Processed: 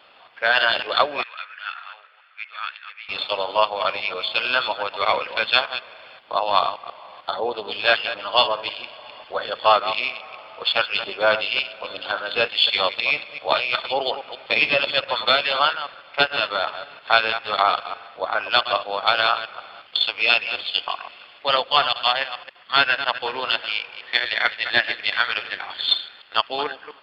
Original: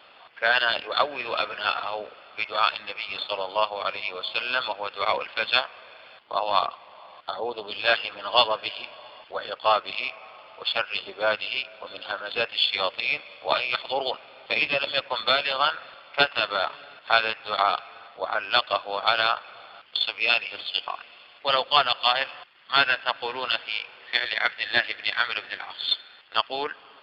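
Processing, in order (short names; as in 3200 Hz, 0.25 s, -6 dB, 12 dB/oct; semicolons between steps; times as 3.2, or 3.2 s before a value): reverse delay 0.138 s, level -11 dB; AGC gain up to 6 dB; 1.23–3.09 ladder band-pass 2000 Hz, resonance 45%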